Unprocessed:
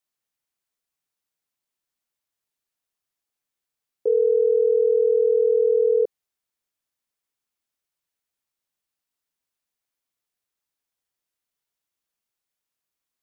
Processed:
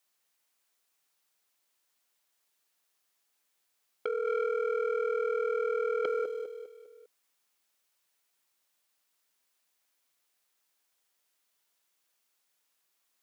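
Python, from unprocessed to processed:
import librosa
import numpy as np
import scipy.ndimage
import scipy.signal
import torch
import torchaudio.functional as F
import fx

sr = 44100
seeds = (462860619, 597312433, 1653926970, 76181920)

p1 = np.clip(x, -10.0 ** (-24.5 / 20.0), 10.0 ** (-24.5 / 20.0))
p2 = x + F.gain(torch.from_numpy(p1), -3.5).numpy()
p3 = fx.echo_feedback(p2, sr, ms=201, feedback_pct=43, wet_db=-10.0)
p4 = fx.over_compress(p3, sr, threshold_db=-24.0, ratio=-1.0)
p5 = fx.highpass(p4, sr, hz=460.0, slope=6)
p6 = fx.transformer_sat(p5, sr, knee_hz=1400.0)
y = F.gain(torch.from_numpy(p6), -1.0).numpy()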